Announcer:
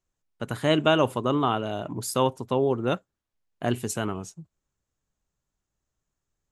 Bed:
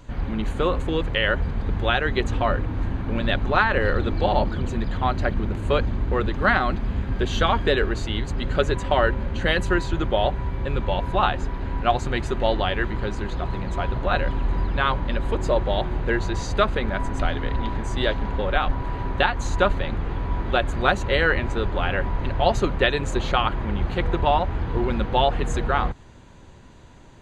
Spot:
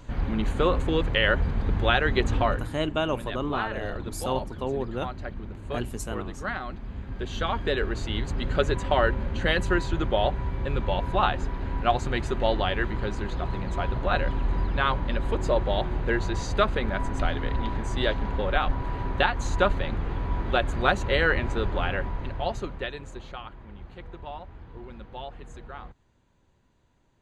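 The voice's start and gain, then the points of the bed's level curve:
2.10 s, -6.0 dB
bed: 2.42 s -0.5 dB
2.79 s -12.5 dB
6.74 s -12.5 dB
8.21 s -2.5 dB
21.76 s -2.5 dB
23.47 s -19 dB

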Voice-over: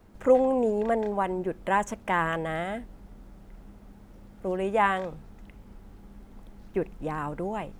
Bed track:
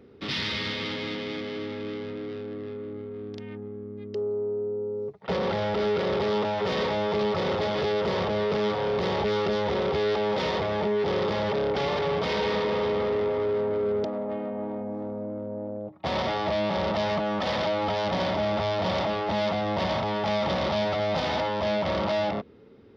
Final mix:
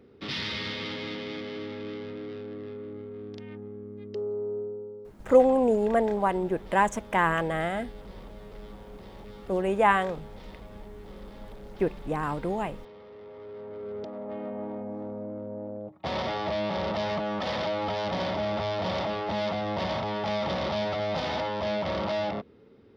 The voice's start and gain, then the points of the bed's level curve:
5.05 s, +2.0 dB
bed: 4.58 s -3 dB
5.53 s -22.5 dB
13.06 s -22.5 dB
14.47 s -3 dB

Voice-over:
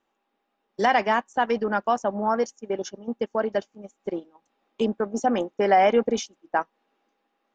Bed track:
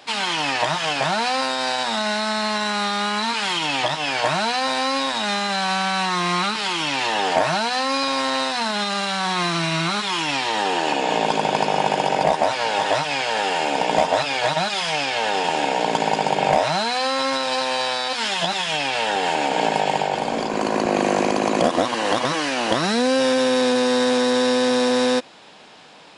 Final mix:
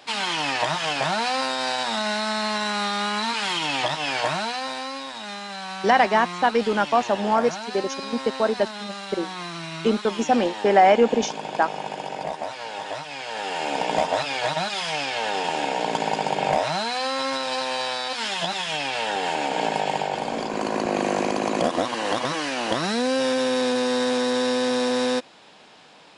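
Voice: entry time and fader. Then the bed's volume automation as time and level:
5.05 s, +3.0 dB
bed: 4.17 s -2.5 dB
5.02 s -11.5 dB
13.12 s -11.5 dB
13.73 s -4 dB

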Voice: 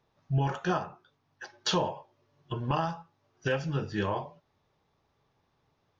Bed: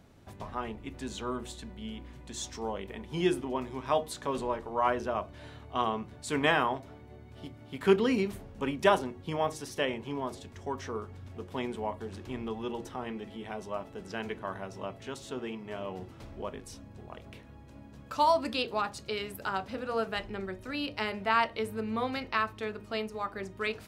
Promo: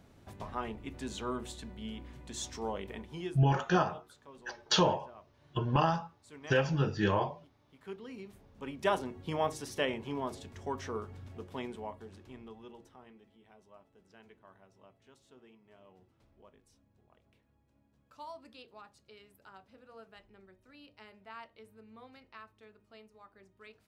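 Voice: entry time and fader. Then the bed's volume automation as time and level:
3.05 s, +1.5 dB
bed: 2.99 s -1.5 dB
3.48 s -21 dB
7.99 s -21 dB
9.17 s -1.5 dB
11.19 s -1.5 dB
13.39 s -21.5 dB

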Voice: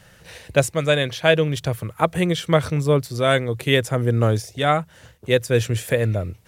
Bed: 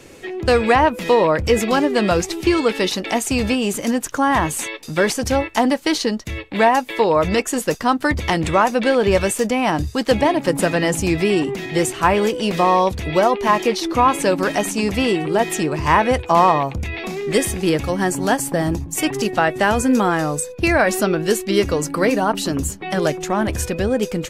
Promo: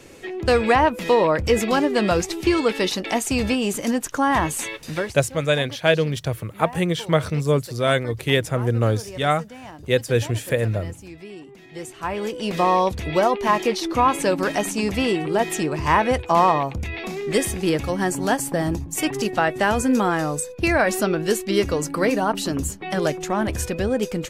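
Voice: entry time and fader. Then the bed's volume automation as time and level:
4.60 s, -1.5 dB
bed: 4.94 s -2.5 dB
5.17 s -21.5 dB
11.46 s -21.5 dB
12.62 s -3 dB

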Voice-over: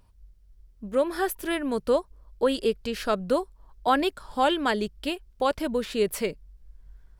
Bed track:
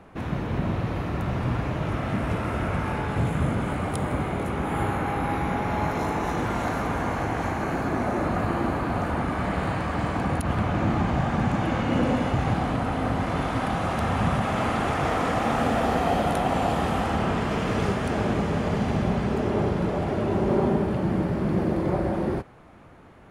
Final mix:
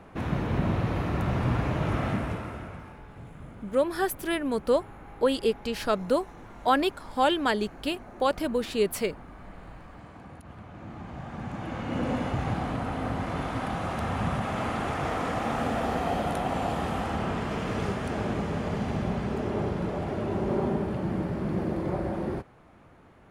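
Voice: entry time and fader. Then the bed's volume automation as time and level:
2.80 s, -0.5 dB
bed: 2.06 s 0 dB
3.01 s -20.5 dB
10.68 s -20.5 dB
12.15 s -5 dB

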